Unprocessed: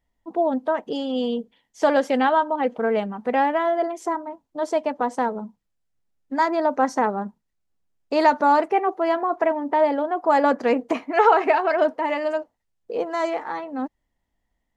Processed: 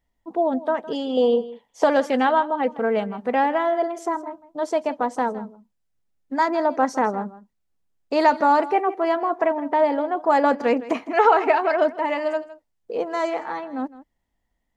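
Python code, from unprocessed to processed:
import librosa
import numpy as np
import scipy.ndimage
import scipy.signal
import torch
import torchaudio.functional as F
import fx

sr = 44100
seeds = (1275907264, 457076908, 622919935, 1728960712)

y = fx.band_shelf(x, sr, hz=710.0, db=9.5, octaves=1.7, at=(1.17, 1.84))
y = y + 10.0 ** (-17.0 / 20.0) * np.pad(y, (int(161 * sr / 1000.0), 0))[:len(y)]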